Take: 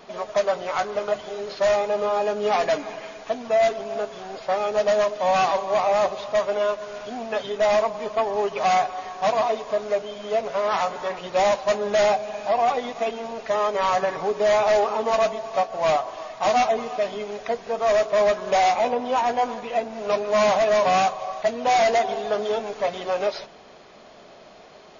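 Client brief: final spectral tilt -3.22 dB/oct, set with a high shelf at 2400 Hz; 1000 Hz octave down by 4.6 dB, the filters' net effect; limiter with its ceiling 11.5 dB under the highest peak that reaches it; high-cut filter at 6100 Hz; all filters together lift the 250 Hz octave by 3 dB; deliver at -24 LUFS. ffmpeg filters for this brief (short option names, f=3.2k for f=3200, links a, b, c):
-af "lowpass=6.1k,equalizer=f=250:t=o:g=4,equalizer=f=1k:t=o:g=-9,highshelf=f=2.4k:g=8.5,volume=6dB,alimiter=limit=-15dB:level=0:latency=1"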